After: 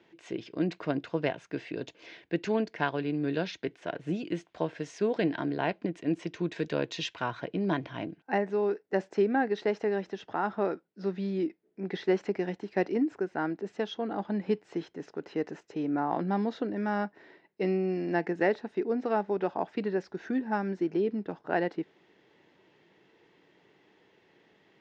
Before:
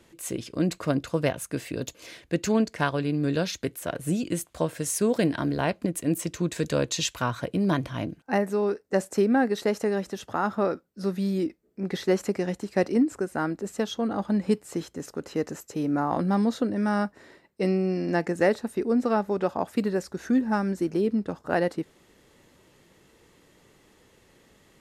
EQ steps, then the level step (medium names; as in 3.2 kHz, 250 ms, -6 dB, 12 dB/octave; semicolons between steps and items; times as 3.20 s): distance through air 59 m; cabinet simulation 220–5200 Hz, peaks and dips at 240 Hz -7 dB, 540 Hz -7 dB, 1.2 kHz -8 dB, 4.3 kHz -4 dB; treble shelf 4.1 kHz -6.5 dB; 0.0 dB